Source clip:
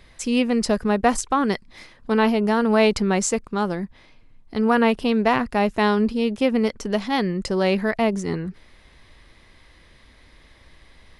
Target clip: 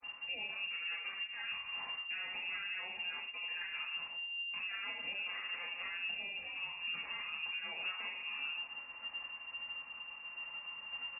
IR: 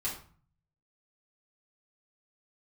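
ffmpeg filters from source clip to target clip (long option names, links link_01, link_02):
-filter_complex "[0:a]agate=range=-33dB:threshold=-46dB:ratio=3:detection=peak,equalizer=frequency=150:width_type=o:width=2.8:gain=-8,bandreject=frequency=50:width_type=h:width=6,bandreject=frequency=100:width_type=h:width=6,bandreject=frequency=150:width_type=h:width=6,aecho=1:1:78|156|234|312:0.224|0.0851|0.0323|0.0123,acompressor=threshold=-31dB:ratio=16,alimiter=level_in=6dB:limit=-24dB:level=0:latency=1:release=129,volume=-6dB,acrossover=split=96|1300[link_01][link_02][link_03];[link_01]acompressor=threshold=-56dB:ratio=4[link_04];[link_02]acompressor=threshold=-48dB:ratio=4[link_05];[link_03]acompressor=threshold=-51dB:ratio=4[link_06];[link_04][link_05][link_06]amix=inputs=3:normalize=0,asetrate=38170,aresample=44100,atempo=1.15535,flanger=delay=3.8:depth=4:regen=-55:speed=1.5:shape=sinusoidal,aeval=exprs='0.0141*(cos(1*acos(clip(val(0)/0.0141,-1,1)))-cos(1*PI/2))+0.00355*(cos(2*acos(clip(val(0)/0.0141,-1,1)))-cos(2*PI/2))+0.00316*(cos(4*acos(clip(val(0)/0.0141,-1,1)))-cos(4*PI/2))+0.00282*(cos(6*acos(clip(val(0)/0.0141,-1,1)))-cos(6*PI/2))':channel_layout=same[link_07];[1:a]atrim=start_sample=2205,afade=type=out:start_time=0.13:duration=0.01,atrim=end_sample=6174[link_08];[link_07][link_08]afir=irnorm=-1:irlink=0,lowpass=frequency=2400:width_type=q:width=0.5098,lowpass=frequency=2400:width_type=q:width=0.6013,lowpass=frequency=2400:width_type=q:width=0.9,lowpass=frequency=2400:width_type=q:width=2.563,afreqshift=-2800,volume=3.5dB"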